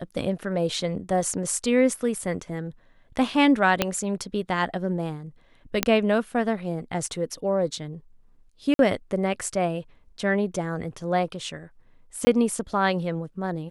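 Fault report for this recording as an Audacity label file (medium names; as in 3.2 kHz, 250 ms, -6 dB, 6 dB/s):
3.820000	3.820000	pop -5 dBFS
5.830000	5.830000	pop -3 dBFS
8.740000	8.790000	dropout 52 ms
12.250000	12.270000	dropout 20 ms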